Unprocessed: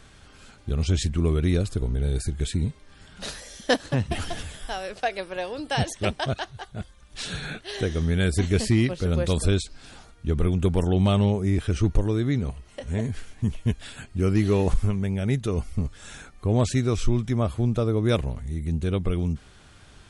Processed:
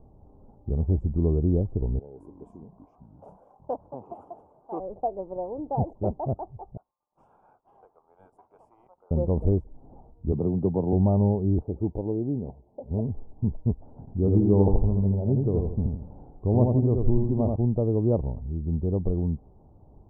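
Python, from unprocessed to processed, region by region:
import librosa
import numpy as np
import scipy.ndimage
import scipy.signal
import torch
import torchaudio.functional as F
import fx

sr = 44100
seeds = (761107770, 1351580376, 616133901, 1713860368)

y = fx.chain(x, sr, fx.highpass(hz=720.0, slope=6),
    fx.tilt_eq(slope=3.0),
    fx.echo_pitch(ms=180, semitones=-7, count=2, db_per_echo=-6.0), at=(1.99, 4.8))
y = fx.chain(y, sr, fx.highpass(hz=1200.0, slope=24),
    fx.leveller(passes=1), at=(6.77, 9.11))
y = fx.chain(y, sr, fx.highpass(hz=110.0, slope=24),
    fx.band_squash(depth_pct=40), at=(10.32, 10.93))
y = fx.chain(y, sr, fx.highpass(hz=230.0, slope=6),
    fx.band_shelf(hz=1500.0, db=-10.0, octaves=1.2), at=(11.63, 12.91))
y = fx.chain(y, sr, fx.high_shelf(hz=4500.0, db=-10.5),
    fx.echo_feedback(ms=81, feedback_pct=39, wet_db=-3.5), at=(13.99, 17.56))
y = fx.wiener(y, sr, points=15)
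y = scipy.signal.sosfilt(scipy.signal.ellip(4, 1.0, 50, 890.0, 'lowpass', fs=sr, output='sos'), y)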